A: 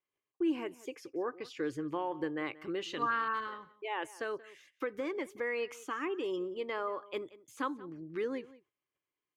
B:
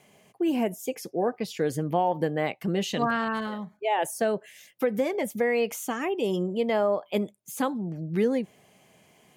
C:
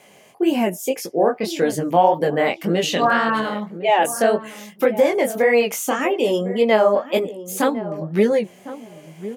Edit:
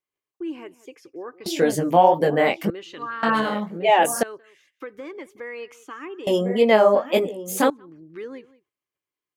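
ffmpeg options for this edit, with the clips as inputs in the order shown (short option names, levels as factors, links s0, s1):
-filter_complex "[2:a]asplit=3[s0][s1][s2];[0:a]asplit=4[s3][s4][s5][s6];[s3]atrim=end=1.462[s7];[s0]atrim=start=1.458:end=2.702[s8];[s4]atrim=start=2.698:end=3.232[s9];[s1]atrim=start=3.228:end=4.232[s10];[s5]atrim=start=4.228:end=6.272[s11];[s2]atrim=start=6.268:end=7.702[s12];[s6]atrim=start=7.698[s13];[s7][s8]acrossfade=d=0.004:c1=hsin:c2=hsin[s14];[s14][s9]acrossfade=d=0.004:c1=hsin:c2=hsin[s15];[s15][s10]acrossfade=d=0.004:c1=hsin:c2=hsin[s16];[s16][s11]acrossfade=d=0.004:c1=hsin:c2=hsin[s17];[s17][s12]acrossfade=d=0.004:c1=hsin:c2=hsin[s18];[s18][s13]acrossfade=d=0.004:c1=hsin:c2=hsin"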